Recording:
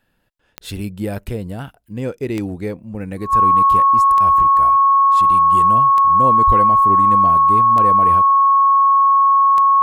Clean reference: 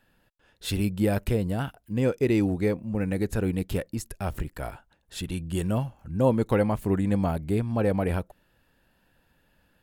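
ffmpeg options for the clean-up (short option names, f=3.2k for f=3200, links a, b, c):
-filter_complex "[0:a]adeclick=t=4,bandreject=f=1.1k:w=30,asplit=3[a][b][c];[a]afade=t=out:st=6.46:d=0.02[d];[b]highpass=f=140:w=0.5412,highpass=f=140:w=1.3066,afade=t=in:st=6.46:d=0.02,afade=t=out:st=6.58:d=0.02[e];[c]afade=t=in:st=6.58:d=0.02[f];[d][e][f]amix=inputs=3:normalize=0"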